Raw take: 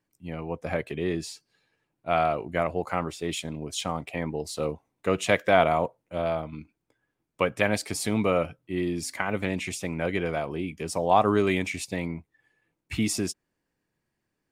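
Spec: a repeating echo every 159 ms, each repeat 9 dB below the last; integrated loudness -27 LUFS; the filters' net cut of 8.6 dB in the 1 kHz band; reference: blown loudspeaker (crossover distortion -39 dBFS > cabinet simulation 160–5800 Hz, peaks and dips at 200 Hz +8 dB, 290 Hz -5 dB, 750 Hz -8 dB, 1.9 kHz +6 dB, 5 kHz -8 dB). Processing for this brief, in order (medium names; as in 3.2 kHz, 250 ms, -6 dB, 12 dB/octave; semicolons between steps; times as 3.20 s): peaking EQ 1 kHz -7 dB; feedback delay 159 ms, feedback 35%, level -9 dB; crossover distortion -39 dBFS; cabinet simulation 160–5800 Hz, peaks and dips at 200 Hz +8 dB, 290 Hz -5 dB, 750 Hz -8 dB, 1.9 kHz +6 dB, 5 kHz -8 dB; trim +3.5 dB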